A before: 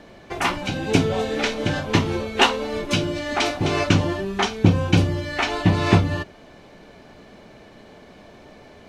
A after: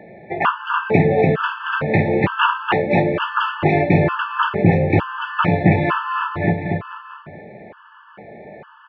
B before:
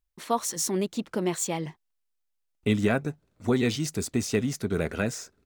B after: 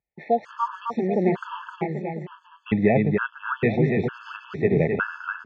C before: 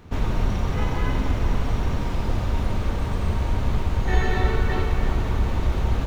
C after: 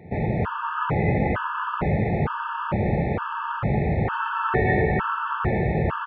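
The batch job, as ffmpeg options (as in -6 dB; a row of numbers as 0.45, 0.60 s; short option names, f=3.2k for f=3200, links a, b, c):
-filter_complex "[0:a]highpass=140,equalizer=f=150:t=q:w=4:g=5,equalizer=f=270:t=q:w=4:g=-9,equalizer=f=1.3k:t=q:w=4:g=5,lowpass=f=2.3k:w=0.5412,lowpass=f=2.3k:w=1.3066,asplit=2[a][b];[b]aecho=0:1:290|551|785.9|997.3|1188:0.631|0.398|0.251|0.158|0.1[c];[a][c]amix=inputs=2:normalize=0,alimiter=level_in=8dB:limit=-1dB:release=50:level=0:latency=1,afftfilt=real='re*gt(sin(2*PI*1.1*pts/sr)*(1-2*mod(floor(b*sr/1024/870),2)),0)':imag='im*gt(sin(2*PI*1.1*pts/sr)*(1-2*mod(floor(b*sr/1024/870),2)),0)':win_size=1024:overlap=0.75,volume=-1dB"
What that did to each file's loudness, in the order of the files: +3.0, +4.0, +1.0 LU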